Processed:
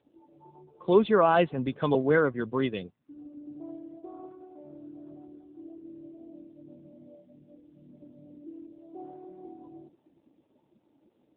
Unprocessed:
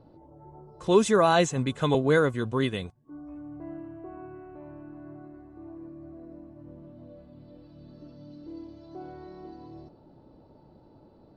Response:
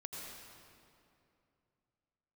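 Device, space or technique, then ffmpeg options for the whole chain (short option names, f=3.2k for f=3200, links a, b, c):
mobile call with aggressive noise cancelling: -af "highpass=170,afftdn=nr=13:nf=-41" -ar 8000 -c:a libopencore_amrnb -b:a 7950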